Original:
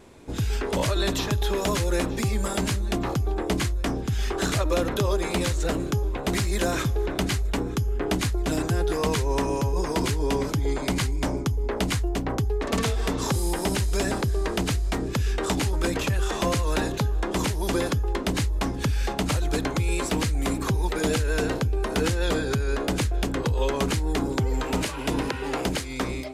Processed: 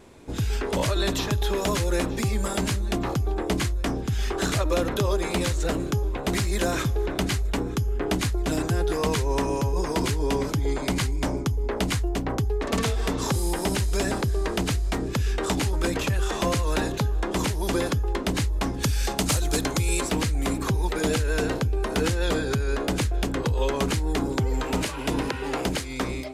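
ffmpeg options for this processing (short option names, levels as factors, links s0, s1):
-filter_complex "[0:a]asettb=1/sr,asplit=3[s0][s1][s2];[s0]atrim=end=18.834[s3];[s1]atrim=start=18.83:end=20.01,asetpts=PTS-STARTPTS,afade=t=in:d=0.004:c=qsin,afade=t=out:st=1.176:d=0.004:c=qsin,bass=f=250:g=0,treble=f=4000:g=9[s4];[s2]atrim=start=20.006[s5];[s3][s4]acrossfade=d=0.004:c1=hsin:c2=qsin[s6];[s6][s5]acrossfade=d=0.004:c1=qsin:c2=hsin"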